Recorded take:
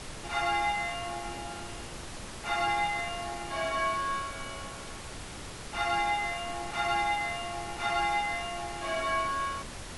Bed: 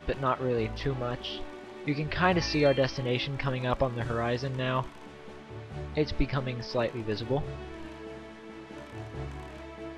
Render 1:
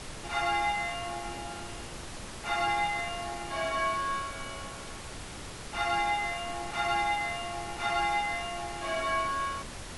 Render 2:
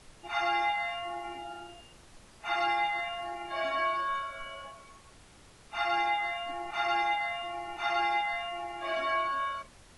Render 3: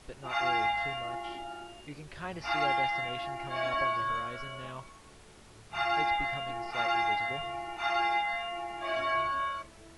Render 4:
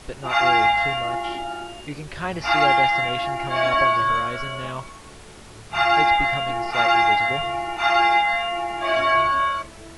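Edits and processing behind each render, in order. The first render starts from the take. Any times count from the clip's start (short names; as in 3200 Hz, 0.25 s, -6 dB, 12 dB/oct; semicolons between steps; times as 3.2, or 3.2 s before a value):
nothing audible
noise print and reduce 14 dB
add bed -15 dB
gain +11.5 dB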